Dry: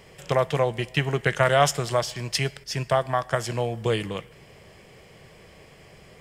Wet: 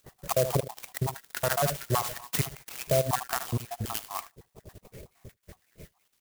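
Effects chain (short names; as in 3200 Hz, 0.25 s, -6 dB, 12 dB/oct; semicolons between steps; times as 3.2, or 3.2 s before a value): random spectral dropouts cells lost 71%; in parallel at -2.5 dB: compressor, threshold -34 dBFS, peak gain reduction 16.5 dB; on the sum: LPF 9600 Hz 24 dB/oct; low shelf 100 Hz +6 dB; upward compressor, threshold -45 dBFS; on a send: echo 76 ms -15.5 dB; on the sum: gate -45 dBFS, range -16 dB; dynamic EQ 740 Hz, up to +3 dB, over -35 dBFS, Q 0.81; limiter -15 dBFS, peak gain reduction 11.5 dB; clock jitter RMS 0.09 ms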